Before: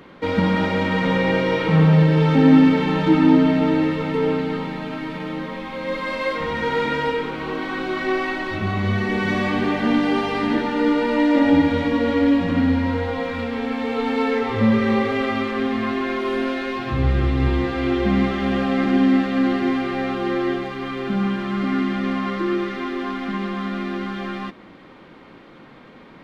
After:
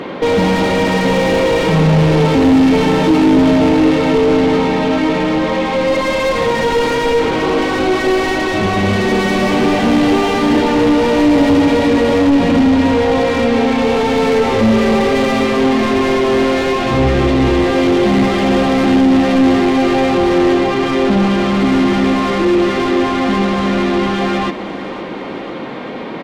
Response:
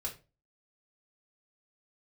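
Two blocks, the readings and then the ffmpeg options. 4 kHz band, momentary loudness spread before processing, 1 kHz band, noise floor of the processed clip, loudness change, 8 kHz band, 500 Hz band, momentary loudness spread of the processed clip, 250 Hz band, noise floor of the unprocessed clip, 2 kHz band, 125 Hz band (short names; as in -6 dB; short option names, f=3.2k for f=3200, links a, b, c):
+10.0 dB, 11 LU, +8.5 dB, -25 dBFS, +7.5 dB, n/a, +10.0 dB, 4 LU, +6.5 dB, -45 dBFS, +6.5 dB, +4.0 dB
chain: -filter_complex "[0:a]asplit=2[a][b];[b]highpass=f=720:p=1,volume=35dB,asoftclip=type=tanh:threshold=-2.5dB[c];[a][c]amix=inputs=2:normalize=0,lowpass=f=1.3k:p=1,volume=-6dB,equalizer=f=1.4k:w=1:g=-9,aecho=1:1:512|1024|1536|2048|2560|3072:0.178|0.101|0.0578|0.0329|0.0188|0.0107"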